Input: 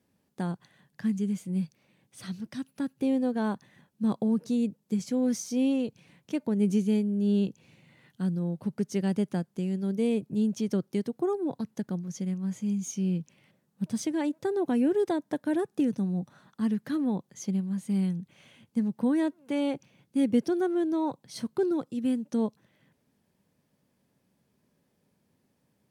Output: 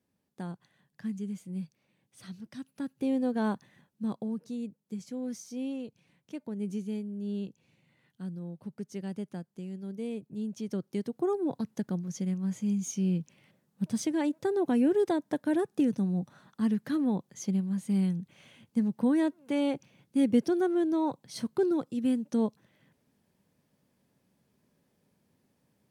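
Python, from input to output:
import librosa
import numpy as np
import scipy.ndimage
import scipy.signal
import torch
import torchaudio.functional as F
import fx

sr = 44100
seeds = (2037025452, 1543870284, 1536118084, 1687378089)

y = fx.gain(x, sr, db=fx.line((2.43, -7.0), (3.48, 0.0), (4.43, -9.5), (10.35, -9.5), (11.36, 0.0)))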